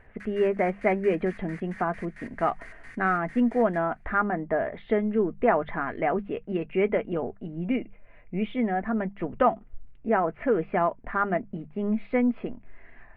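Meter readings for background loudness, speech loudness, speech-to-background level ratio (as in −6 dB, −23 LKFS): −46.5 LKFS, −27.5 LKFS, 19.0 dB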